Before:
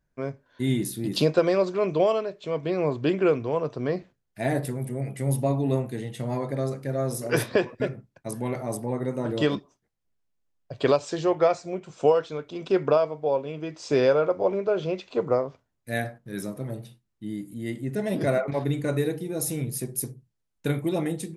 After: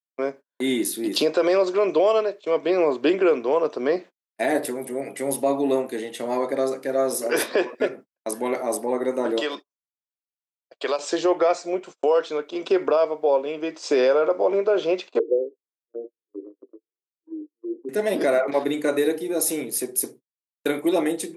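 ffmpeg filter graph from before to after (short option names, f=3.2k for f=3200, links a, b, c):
-filter_complex "[0:a]asettb=1/sr,asplit=3[a][b][c];[a]atrim=end=9.404[d];[b]atrim=start=9.4:end=10.99,asetpts=PTS-STARTPTS,afade=t=in:d=0.004:c=qsin,afade=t=out:st=1.586:d=0.004:c=qsin,highpass=f=770:p=1,acompressor=threshold=-36dB:ratio=1.5:attack=3.2:release=140:knee=1:detection=peak[e];[c]atrim=start=10.986[f];[d][e]acrossfade=d=0.004:c1=hsin:c2=qsin[g];[g][f]acrossfade=d=0.004:c1=qsin:c2=hsin,asettb=1/sr,asplit=3[h][i][j];[h]atrim=end=15.194[k];[i]atrim=start=15.19:end=17.89,asetpts=PTS-STARTPTS,afade=t=in:d=0.004:c=qsin,afade=t=out:st=2.696:d=0.004:c=qsin,aeval=exprs='val(0)+0.5*0.0282*sgn(val(0))':c=same,agate=range=-33dB:threshold=-24dB:ratio=3:release=100:detection=peak,asuperpass=centerf=370:order=8:qfactor=1.8[l];[j]atrim=start=17.886[m];[k][l]acrossfade=d=0.004:c1=hsin:c2=qsin[n];[n][m]acrossfade=d=0.004:c1=qsin:c2=hsin,agate=range=-41dB:threshold=-41dB:ratio=16:detection=peak,highpass=f=290:w=0.5412,highpass=f=290:w=1.3066,alimiter=limit=-18dB:level=0:latency=1:release=61,volume=7dB"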